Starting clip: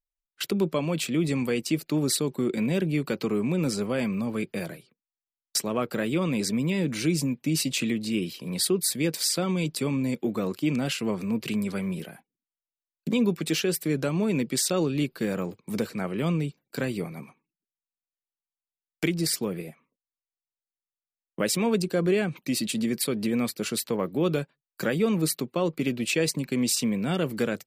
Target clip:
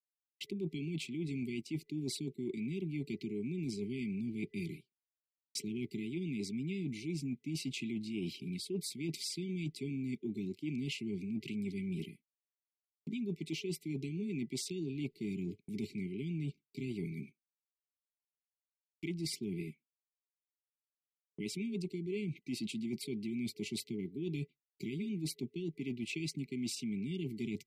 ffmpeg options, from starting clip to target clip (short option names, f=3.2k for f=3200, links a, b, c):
-af "afftfilt=real='re*(1-between(b*sr/4096,420,2000))':imag='im*(1-between(b*sr/4096,420,2000))':win_size=4096:overlap=0.75,agate=range=-33dB:threshold=-40dB:ratio=3:detection=peak,aemphasis=mode=reproduction:type=50fm,areverse,acompressor=threshold=-33dB:ratio=8,areverse,volume=-2.5dB"